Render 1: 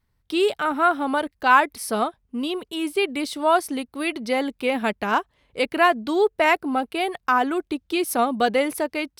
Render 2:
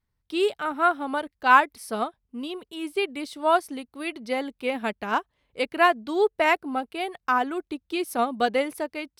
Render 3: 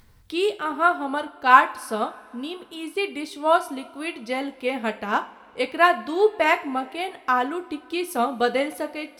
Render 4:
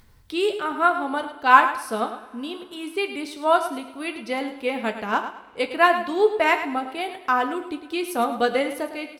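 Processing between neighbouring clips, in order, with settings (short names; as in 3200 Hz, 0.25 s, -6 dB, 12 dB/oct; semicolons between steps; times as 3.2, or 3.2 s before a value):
high shelf 11000 Hz -3 dB; upward expander 1.5:1, over -28 dBFS
upward compressor, threshold -38 dBFS; two-slope reverb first 0.3 s, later 2.9 s, from -22 dB, DRR 7 dB; gain +1 dB
feedback echo 0.106 s, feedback 28%, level -11 dB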